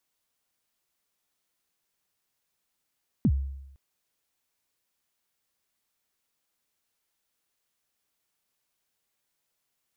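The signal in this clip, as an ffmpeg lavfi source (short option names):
-f lavfi -i "aevalsrc='0.15*pow(10,-3*t/0.88)*sin(2*PI*(280*0.06/log(68/280)*(exp(log(68/280)*min(t,0.06)/0.06)-1)+68*max(t-0.06,0)))':d=0.51:s=44100"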